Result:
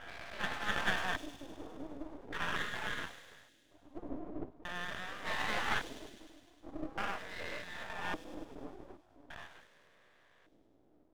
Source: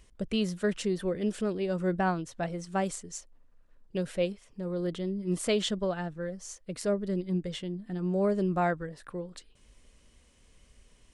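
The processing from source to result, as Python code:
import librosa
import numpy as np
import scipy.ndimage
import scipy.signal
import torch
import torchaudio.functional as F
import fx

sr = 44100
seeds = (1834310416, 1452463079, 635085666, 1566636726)

y = fx.spec_dilate(x, sr, span_ms=480)
y = fx.noise_reduce_blind(y, sr, reduce_db=7)
y = fx.spec_gate(y, sr, threshold_db=-20, keep='weak')
y = fx.peak_eq(y, sr, hz=680.0, db=11.5, octaves=1.6)
y = fx.comb_fb(y, sr, f0_hz=71.0, decay_s=1.5, harmonics='all', damping=0.0, mix_pct=40)
y = fx.filter_lfo_lowpass(y, sr, shape='square', hz=0.43, low_hz=310.0, high_hz=1700.0, q=6.3)
y = np.maximum(y, 0.0)
y = fx.spacing_loss(y, sr, db_at_10k=29, at=(3.98, 4.63))
y = fx.echo_wet_highpass(y, sr, ms=102, feedback_pct=72, hz=4900.0, wet_db=-5.5)
y = y * librosa.db_to_amplitude(2.5)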